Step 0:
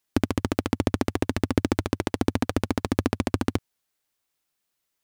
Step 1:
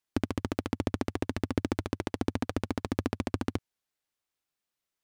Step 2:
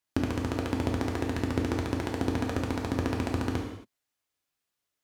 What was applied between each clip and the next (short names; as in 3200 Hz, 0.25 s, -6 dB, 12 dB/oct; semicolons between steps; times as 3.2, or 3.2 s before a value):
high shelf 8700 Hz -6 dB; gain -6.5 dB
reverb, pre-delay 3 ms, DRR 0 dB